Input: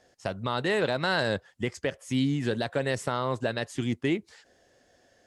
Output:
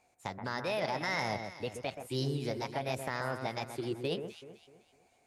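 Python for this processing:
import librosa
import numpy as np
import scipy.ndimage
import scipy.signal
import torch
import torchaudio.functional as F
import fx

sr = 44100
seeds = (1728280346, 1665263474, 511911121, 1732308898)

y = fx.formant_shift(x, sr, semitones=5)
y = fx.echo_alternate(y, sr, ms=127, hz=2000.0, feedback_pct=58, wet_db=-7.0)
y = y * 10.0 ** (-7.5 / 20.0)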